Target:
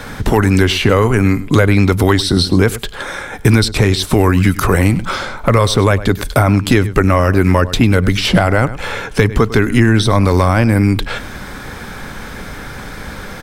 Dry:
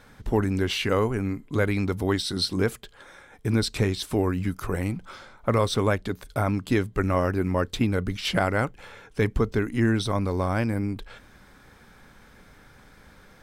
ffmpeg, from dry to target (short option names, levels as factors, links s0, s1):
-filter_complex "[0:a]asplit=2[s0][s1];[s1]adelay=99.13,volume=0.112,highshelf=f=4000:g=-2.23[s2];[s0][s2]amix=inputs=2:normalize=0,acrossover=split=92|1100[s3][s4][s5];[s3]acompressor=threshold=0.00891:ratio=4[s6];[s4]acompressor=threshold=0.0178:ratio=4[s7];[s5]acompressor=threshold=0.00794:ratio=4[s8];[s6][s7][s8]amix=inputs=3:normalize=0,apsyclip=17.8,volume=0.841"